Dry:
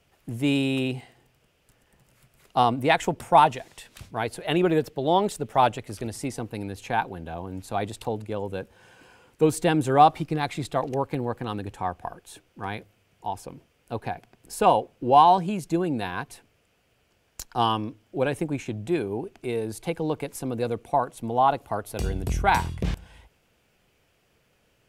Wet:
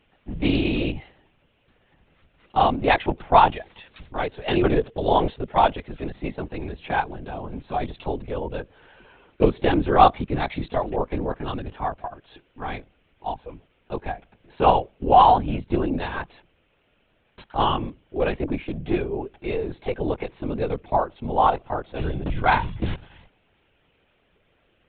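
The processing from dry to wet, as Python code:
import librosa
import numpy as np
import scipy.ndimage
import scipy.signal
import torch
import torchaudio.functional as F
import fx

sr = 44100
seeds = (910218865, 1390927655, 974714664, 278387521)

y = scipy.signal.sosfilt(scipy.signal.butter(2, 48.0, 'highpass', fs=sr, output='sos'), x)
y = fx.lpc_vocoder(y, sr, seeds[0], excitation='whisper', order=16)
y = fx.doppler_dist(y, sr, depth_ms=0.15)
y = y * librosa.db_to_amplitude(2.0)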